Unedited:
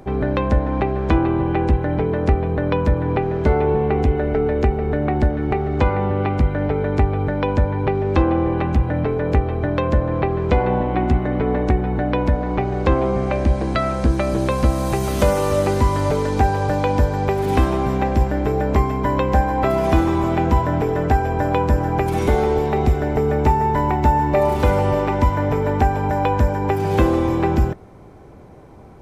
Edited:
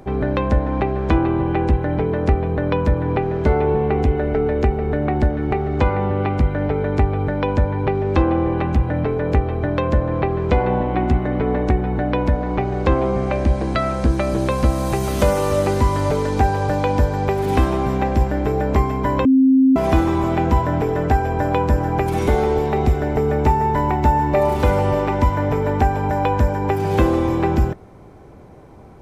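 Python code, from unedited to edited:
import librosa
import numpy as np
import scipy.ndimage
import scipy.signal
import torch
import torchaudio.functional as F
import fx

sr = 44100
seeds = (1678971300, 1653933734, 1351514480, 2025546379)

y = fx.edit(x, sr, fx.bleep(start_s=19.25, length_s=0.51, hz=264.0, db=-9.5), tone=tone)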